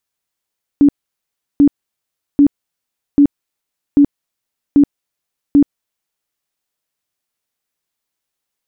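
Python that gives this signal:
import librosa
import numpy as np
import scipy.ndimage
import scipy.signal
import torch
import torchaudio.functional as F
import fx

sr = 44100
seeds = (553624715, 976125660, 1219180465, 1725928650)

y = fx.tone_burst(sr, hz=286.0, cycles=22, every_s=0.79, bursts=7, level_db=-4.5)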